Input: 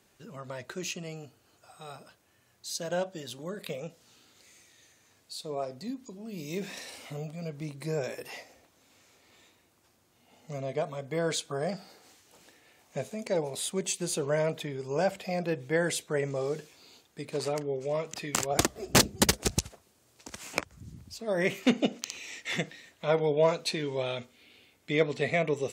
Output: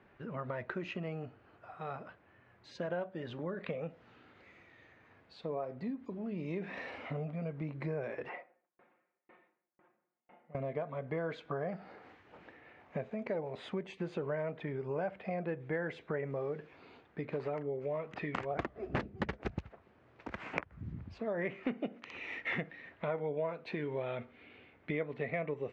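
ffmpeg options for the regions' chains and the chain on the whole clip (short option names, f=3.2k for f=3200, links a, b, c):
-filter_complex "[0:a]asettb=1/sr,asplit=3[a][b][c];[a]atrim=end=8.294[d];[b]atrim=start=8.29:end=10.55,asetpts=PTS-STARTPTS,afade=t=in:d=0.004:c=qsin,afade=t=out:st=2.256:d=0.004:c=qsin,highpass=240,lowpass=2.1k,aecho=1:1:5.6:0.66,atrim=end_sample=99666,aeval=exprs='val(0)*pow(10,-38*if(lt(mod(2*n/s,1),2*abs(2)/1000),1-mod(2*n/s,1)/(2*abs(2)/1000),(mod(2*n/s,1)-2*abs(2)/1000)/(1-2*abs(2)/1000))/20)':c=same[e];[c]atrim=start=10.546[f];[d][e]acrossfade=d=0.004:c1=hsin:c2=qsin[g];[g][f]acrossfade=d=0.004:c1=qsin:c2=hsin,lowpass=f=2k:w=0.5412,lowpass=f=2k:w=1.3066,acompressor=threshold=-40dB:ratio=4,aemphasis=mode=production:type=75fm,volume=5dB"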